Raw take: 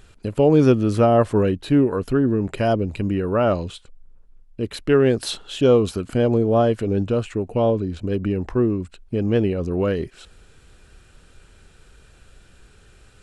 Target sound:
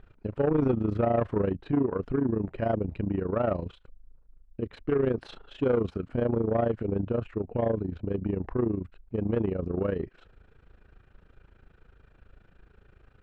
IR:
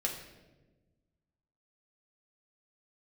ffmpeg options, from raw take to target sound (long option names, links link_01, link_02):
-af "tremolo=f=27:d=0.824,asoftclip=type=tanh:threshold=-15.5dB,lowpass=1800,volume=-2.5dB"